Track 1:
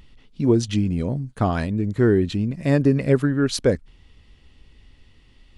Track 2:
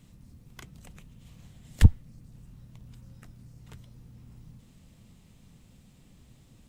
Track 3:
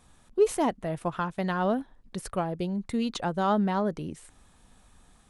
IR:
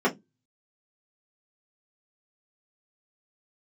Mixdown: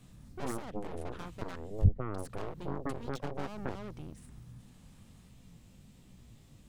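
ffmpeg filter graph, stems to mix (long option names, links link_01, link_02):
-filter_complex "[0:a]acrusher=bits=6:mix=0:aa=0.000001,bandpass=frequency=240:width_type=q:width=2.1:csg=0,volume=-12.5dB,asplit=2[link_01][link_02];[1:a]acrossover=split=230[link_03][link_04];[link_04]acompressor=threshold=-59dB:ratio=4[link_05];[link_03][link_05]amix=inputs=2:normalize=0,flanger=delay=15.5:depth=5.5:speed=1.3,volume=2.5dB[link_06];[2:a]aeval=exprs='(tanh(39.8*val(0)+0.45)-tanh(0.45))/39.8':channel_layout=same,alimiter=level_in=9.5dB:limit=-24dB:level=0:latency=1:release=249,volume=-9.5dB,volume=-4dB,asplit=3[link_07][link_08][link_09];[link_07]atrim=end=1.56,asetpts=PTS-STARTPTS,afade=type=out:start_time=1.556:duration=0.004:curve=hsin[link_10];[link_08]atrim=start=1.56:end=2.09,asetpts=PTS-STARTPTS,volume=0[link_11];[link_09]atrim=start=2.09,asetpts=PTS-STARTPTS,afade=type=in:duration=0.004:curve=hsin[link_12];[link_10][link_11][link_12]concat=n=3:v=0:a=1[link_13];[link_02]apad=whole_len=294769[link_14];[link_06][link_14]sidechaincompress=threshold=-43dB:ratio=8:attack=5.5:release=107[link_15];[link_01][link_13]amix=inputs=2:normalize=0,aeval=exprs='0.075*(cos(1*acos(clip(val(0)/0.075,-1,1)))-cos(1*PI/2))+0.015*(cos(4*acos(clip(val(0)/0.075,-1,1)))-cos(4*PI/2))+0.0299*(cos(6*acos(clip(val(0)/0.075,-1,1)))-cos(6*PI/2))+0.0188*(cos(7*acos(clip(val(0)/0.075,-1,1)))-cos(7*PI/2))':channel_layout=same,acompressor=threshold=-31dB:ratio=6,volume=0dB[link_16];[link_15][link_16]amix=inputs=2:normalize=0"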